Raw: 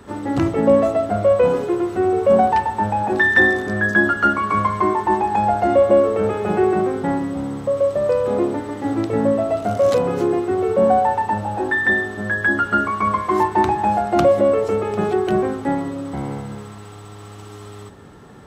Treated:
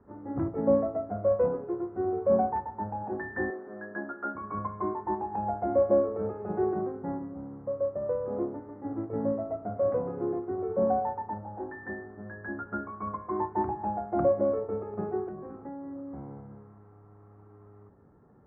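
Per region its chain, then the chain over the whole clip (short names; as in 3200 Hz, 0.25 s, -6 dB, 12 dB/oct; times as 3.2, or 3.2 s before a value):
3.5–4.35 HPF 290 Hz + notches 50/100/150/200/250/300/350/400/450 Hz + doubler 29 ms -11 dB
15.28–16.18 flutter echo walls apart 4.3 m, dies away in 0.32 s + compressor 20:1, threshold -20 dBFS
whole clip: Bessel low-pass 980 Hz, order 8; upward expander 1.5:1, over -26 dBFS; gain -8 dB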